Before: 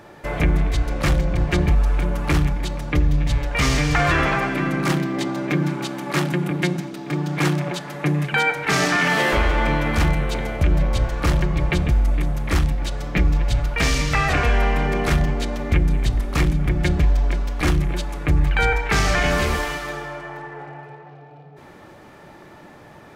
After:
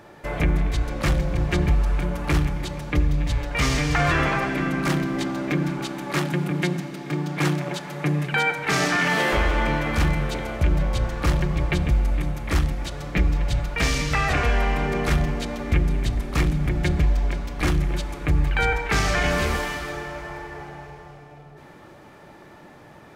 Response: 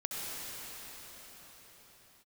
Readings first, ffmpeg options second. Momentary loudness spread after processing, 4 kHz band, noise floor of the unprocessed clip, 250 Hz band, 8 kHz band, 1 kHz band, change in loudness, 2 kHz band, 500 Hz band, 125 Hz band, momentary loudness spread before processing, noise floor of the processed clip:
8 LU, -2.5 dB, -44 dBFS, -2.5 dB, -2.5 dB, -2.5 dB, -2.5 dB, -2.5 dB, -2.5 dB, -2.5 dB, 8 LU, -47 dBFS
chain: -filter_complex "[0:a]asplit=2[a][b];[1:a]atrim=start_sample=2205[c];[b][c]afir=irnorm=-1:irlink=0,volume=-16.5dB[d];[a][d]amix=inputs=2:normalize=0,volume=-3.5dB"

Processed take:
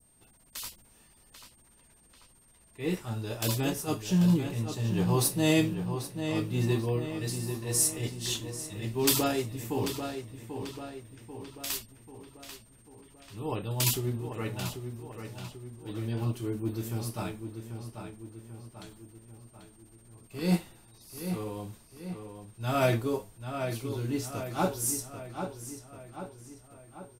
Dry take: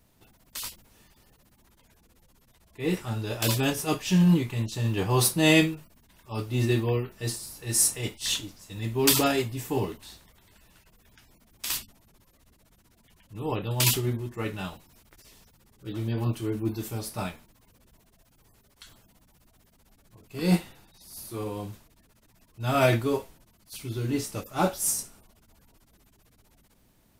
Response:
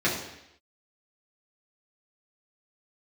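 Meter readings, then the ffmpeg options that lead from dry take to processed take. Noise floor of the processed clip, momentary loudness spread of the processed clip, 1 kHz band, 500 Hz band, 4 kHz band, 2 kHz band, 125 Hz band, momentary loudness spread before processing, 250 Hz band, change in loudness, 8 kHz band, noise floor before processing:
-60 dBFS, 21 LU, -3.5 dB, -3.0 dB, -5.0 dB, -6.5 dB, -2.5 dB, 17 LU, -2.5 dB, -4.5 dB, -3.5 dB, -63 dBFS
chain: -filter_complex "[0:a]aeval=exprs='val(0)+0.00112*sin(2*PI*8700*n/s)':c=same,adynamicequalizer=threshold=0.00501:dfrequency=2200:dqfactor=0.78:tfrequency=2200:tqfactor=0.78:attack=5:release=100:ratio=0.375:range=3.5:mode=cutabove:tftype=bell,asplit=2[a][b];[b]adelay=790,lowpass=f=4.1k:p=1,volume=-7.5dB,asplit=2[c][d];[d]adelay=790,lowpass=f=4.1k:p=1,volume=0.54,asplit=2[e][f];[f]adelay=790,lowpass=f=4.1k:p=1,volume=0.54,asplit=2[g][h];[h]adelay=790,lowpass=f=4.1k:p=1,volume=0.54,asplit=2[i][j];[j]adelay=790,lowpass=f=4.1k:p=1,volume=0.54,asplit=2[k][l];[l]adelay=790,lowpass=f=4.1k:p=1,volume=0.54,asplit=2[m][n];[n]adelay=790,lowpass=f=4.1k:p=1,volume=0.54[o];[a][c][e][g][i][k][m][o]amix=inputs=8:normalize=0,volume=-3.5dB"

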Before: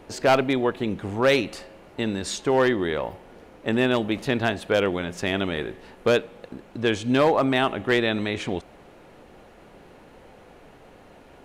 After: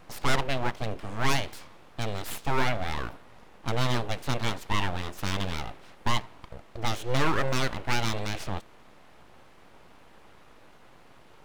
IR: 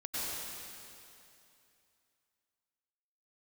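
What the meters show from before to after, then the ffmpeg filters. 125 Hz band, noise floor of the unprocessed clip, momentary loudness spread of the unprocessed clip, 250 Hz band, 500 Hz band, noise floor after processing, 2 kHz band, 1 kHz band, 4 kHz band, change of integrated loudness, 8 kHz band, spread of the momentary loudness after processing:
+0.5 dB, -50 dBFS, 13 LU, -10.5 dB, -12.0 dB, -53 dBFS, -5.5 dB, -3.5 dB, -3.0 dB, -7.0 dB, -0.5 dB, 12 LU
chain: -af "aeval=exprs='abs(val(0))':c=same,volume=-2.5dB"

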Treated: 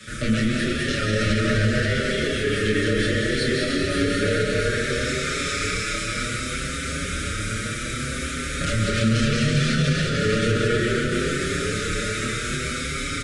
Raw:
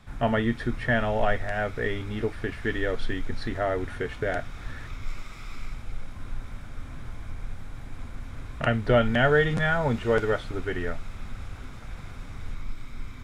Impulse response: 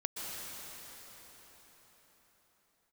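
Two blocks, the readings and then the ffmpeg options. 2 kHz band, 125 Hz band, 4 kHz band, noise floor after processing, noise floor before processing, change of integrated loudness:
+6.0 dB, +7.5 dB, +13.5 dB, -29 dBFS, -41 dBFS, +3.5 dB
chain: -filter_complex "[0:a]highpass=40,aemphasis=mode=production:type=bsi,aeval=exprs='0.0668*(abs(mod(val(0)/0.0668+3,4)-2)-1)':c=same,acrossover=split=210[a][b];[b]acompressor=threshold=-44dB:ratio=3[c];[a][c]amix=inputs=2:normalize=0,asplit=2[d][e];[e]adelay=28,volume=-5dB[f];[d][f]amix=inputs=2:normalize=0[g];[1:a]atrim=start_sample=2205,asetrate=37485,aresample=44100[h];[g][h]afir=irnorm=-1:irlink=0,aresample=22050,aresample=44100,asuperstop=centerf=860:order=12:qfactor=1.4,alimiter=level_in=27dB:limit=-1dB:release=50:level=0:latency=1,asplit=2[i][j];[j]adelay=6.5,afreqshift=0.66[k];[i][k]amix=inputs=2:normalize=1,volume=-8.5dB"

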